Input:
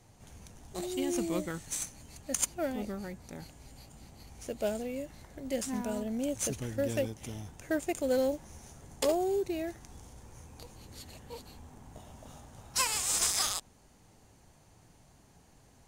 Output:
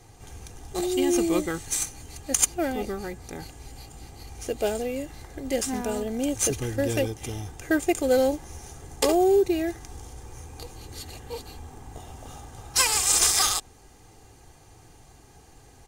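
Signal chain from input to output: comb 2.5 ms, depth 52%; gain +7.5 dB

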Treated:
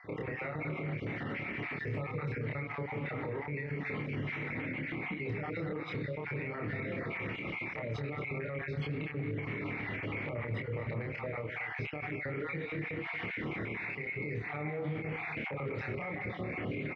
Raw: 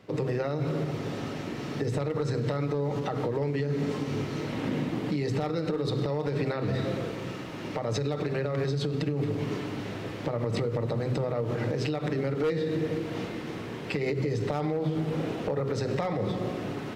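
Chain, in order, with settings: random spectral dropouts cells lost 35%; synth low-pass 2200 Hz, resonance Q 9.6; compressor, threshold -32 dBFS, peak gain reduction 13.5 dB; doubler 27 ms -2 dB; outdoor echo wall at 39 m, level -14 dB; limiter -30 dBFS, peak gain reduction 10.5 dB; HPF 53 Hz; low shelf 100 Hz +7 dB

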